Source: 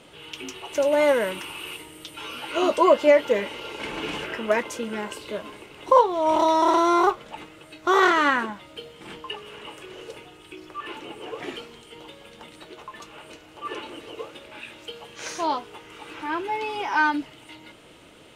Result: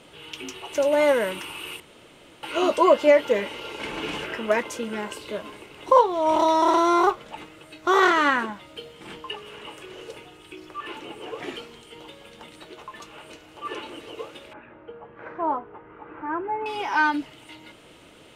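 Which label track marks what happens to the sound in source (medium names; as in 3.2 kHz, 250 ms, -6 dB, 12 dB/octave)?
1.800000	2.430000	room tone
14.530000	16.660000	low-pass 1.6 kHz 24 dB/octave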